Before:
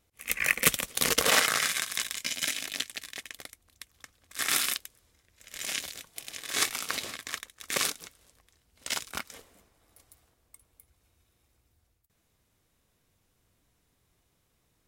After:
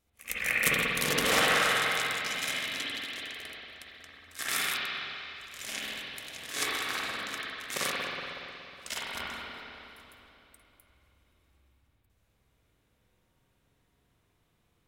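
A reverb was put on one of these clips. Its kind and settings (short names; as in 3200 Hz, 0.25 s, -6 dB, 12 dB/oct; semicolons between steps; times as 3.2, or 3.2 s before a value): spring tank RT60 3 s, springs 46/60 ms, chirp 25 ms, DRR -7 dB; gain -6 dB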